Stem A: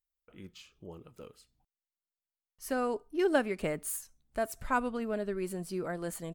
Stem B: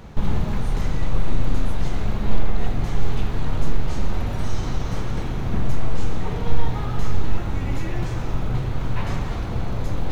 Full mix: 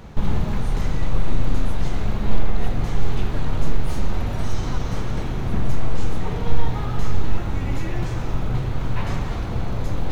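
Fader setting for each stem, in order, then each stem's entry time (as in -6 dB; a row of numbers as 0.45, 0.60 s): -14.0, +0.5 dB; 0.00, 0.00 s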